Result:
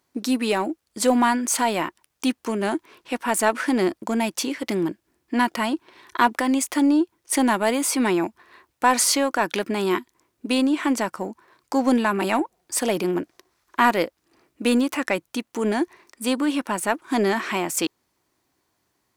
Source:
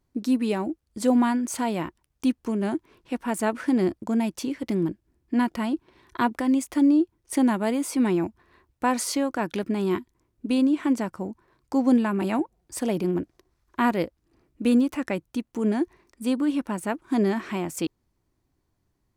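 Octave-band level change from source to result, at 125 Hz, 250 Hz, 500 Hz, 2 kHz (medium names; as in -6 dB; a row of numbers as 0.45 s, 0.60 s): -2.5 dB, 0.0 dB, +4.0 dB, +8.5 dB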